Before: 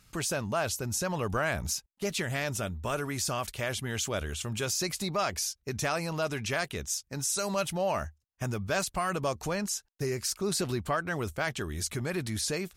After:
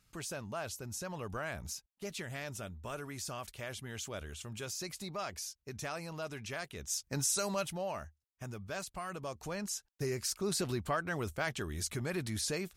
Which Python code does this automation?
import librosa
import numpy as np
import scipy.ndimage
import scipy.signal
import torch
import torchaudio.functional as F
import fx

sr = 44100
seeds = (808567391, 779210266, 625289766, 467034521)

y = fx.gain(x, sr, db=fx.line((6.75, -10.0), (7.08, 1.5), (8.03, -11.0), (9.27, -11.0), (9.87, -4.0)))